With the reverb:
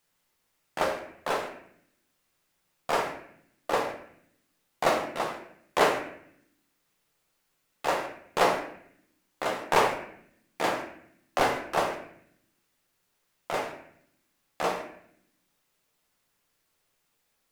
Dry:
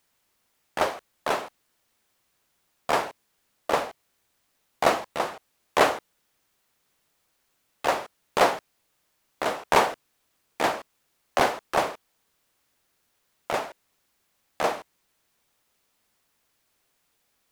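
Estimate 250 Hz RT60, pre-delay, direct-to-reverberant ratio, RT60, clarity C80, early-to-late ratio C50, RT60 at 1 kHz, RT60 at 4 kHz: 1.0 s, 5 ms, 1.5 dB, 0.65 s, 9.5 dB, 6.5 dB, 0.60 s, 0.50 s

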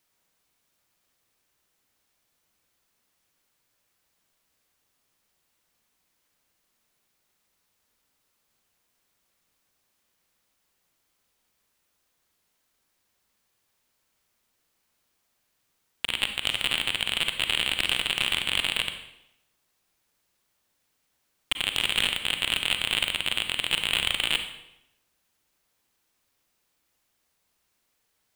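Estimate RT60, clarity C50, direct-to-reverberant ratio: 0.85 s, 8.0 dB, 7.0 dB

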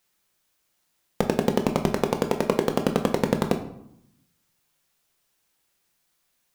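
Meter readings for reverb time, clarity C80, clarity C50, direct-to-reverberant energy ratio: 0.75 s, 13.0 dB, 10.0 dB, 4.5 dB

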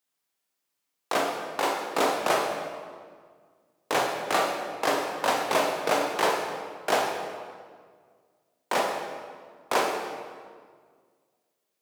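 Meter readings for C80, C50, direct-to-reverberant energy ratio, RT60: 4.5 dB, 3.0 dB, 0.5 dB, 1.8 s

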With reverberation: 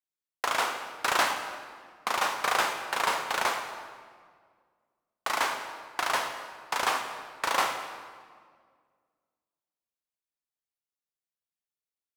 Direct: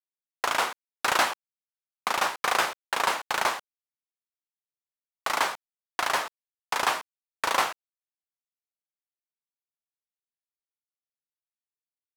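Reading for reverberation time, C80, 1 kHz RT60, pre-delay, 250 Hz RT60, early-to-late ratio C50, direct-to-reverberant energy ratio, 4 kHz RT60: 1.8 s, 7.5 dB, 1.7 s, 25 ms, 2.2 s, 6.5 dB, 5.0 dB, 1.3 s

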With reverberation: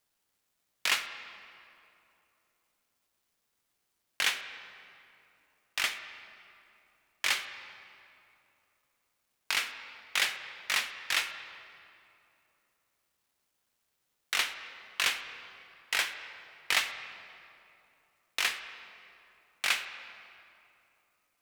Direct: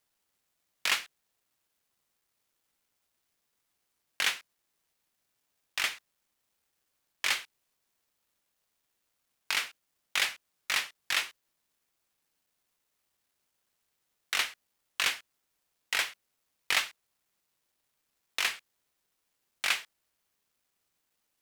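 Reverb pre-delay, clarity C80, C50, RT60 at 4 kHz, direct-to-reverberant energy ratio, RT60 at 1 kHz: 6 ms, 10.0 dB, 9.5 dB, 1.8 s, 8.5 dB, 2.7 s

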